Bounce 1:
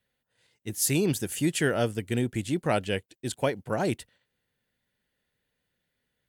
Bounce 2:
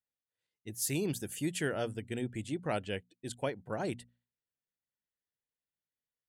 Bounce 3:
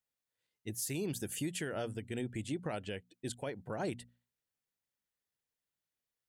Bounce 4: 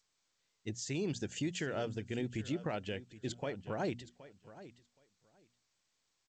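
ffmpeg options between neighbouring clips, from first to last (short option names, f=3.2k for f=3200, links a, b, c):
-af "afftdn=nr=14:nf=-51,bandreject=f=60:t=h:w=6,bandreject=f=120:t=h:w=6,bandreject=f=180:t=h:w=6,bandreject=f=240:t=h:w=6,volume=-8dB"
-af "alimiter=level_in=6.5dB:limit=-24dB:level=0:latency=1:release=161,volume=-6.5dB,volume=2.5dB"
-af "aecho=1:1:771|1542:0.15|0.0224,volume=1dB" -ar 16000 -c:a g722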